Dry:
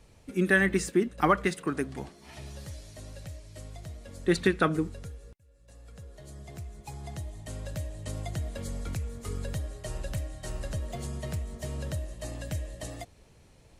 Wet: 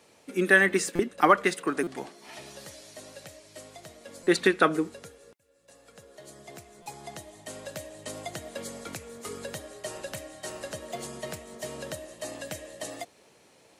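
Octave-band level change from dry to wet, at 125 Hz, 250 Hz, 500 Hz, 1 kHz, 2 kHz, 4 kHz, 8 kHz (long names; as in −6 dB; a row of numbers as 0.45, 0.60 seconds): −9.5, −0.5, +3.0, +4.5, +4.5, +4.5, +4.5 decibels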